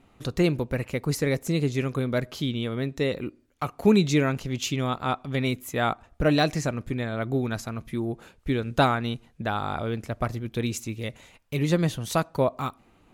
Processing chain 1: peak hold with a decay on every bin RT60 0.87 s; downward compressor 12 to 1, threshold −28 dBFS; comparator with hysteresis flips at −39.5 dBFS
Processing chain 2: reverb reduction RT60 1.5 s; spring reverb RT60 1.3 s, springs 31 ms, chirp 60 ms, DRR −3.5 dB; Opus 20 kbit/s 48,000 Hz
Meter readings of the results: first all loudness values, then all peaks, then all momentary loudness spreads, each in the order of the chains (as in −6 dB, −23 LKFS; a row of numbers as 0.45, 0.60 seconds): −33.5, −23.5 LKFS; −27.0, −6.0 dBFS; 2, 11 LU